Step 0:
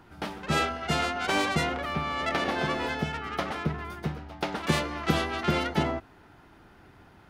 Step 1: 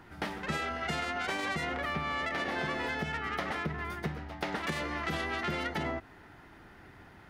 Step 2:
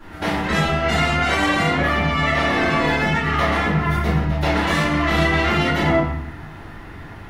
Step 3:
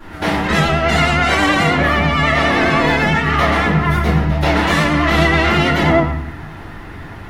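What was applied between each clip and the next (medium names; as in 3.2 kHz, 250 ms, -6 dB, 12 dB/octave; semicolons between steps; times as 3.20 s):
peaking EQ 1.9 kHz +7 dB 0.37 oct; peak limiter -17.5 dBFS, peak gain reduction 8.5 dB; compression, threshold -30 dBFS, peak gain reduction 7 dB
reverberation RT60 0.70 s, pre-delay 3 ms, DRR -14.5 dB
vibrato 9.4 Hz 39 cents; trim +4.5 dB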